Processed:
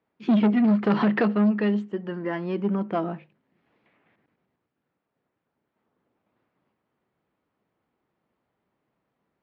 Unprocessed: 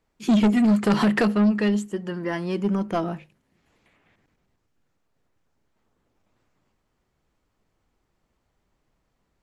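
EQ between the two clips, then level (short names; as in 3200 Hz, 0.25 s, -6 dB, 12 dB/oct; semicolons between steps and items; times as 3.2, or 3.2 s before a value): BPF 160–6900 Hz; air absorption 310 m; 0.0 dB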